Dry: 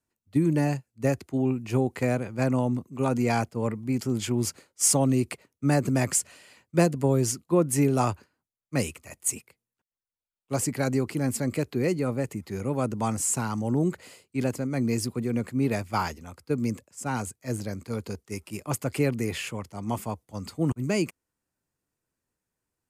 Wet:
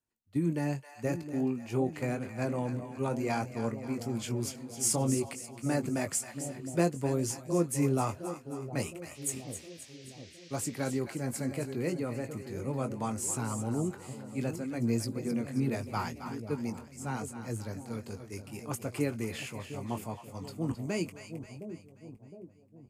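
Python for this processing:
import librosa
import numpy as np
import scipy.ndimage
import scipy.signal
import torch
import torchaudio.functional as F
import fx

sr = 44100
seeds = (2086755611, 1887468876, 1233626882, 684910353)

y = fx.echo_split(x, sr, split_hz=710.0, low_ms=713, high_ms=266, feedback_pct=52, wet_db=-10.0)
y = fx.chorus_voices(y, sr, voices=4, hz=0.73, base_ms=20, depth_ms=3.0, mix_pct=30)
y = fx.dmg_noise_band(y, sr, seeds[0], low_hz=1800.0, high_hz=6200.0, level_db=-52.0, at=(9.14, 10.98), fade=0.02)
y = F.gain(torch.from_numpy(y), -4.5).numpy()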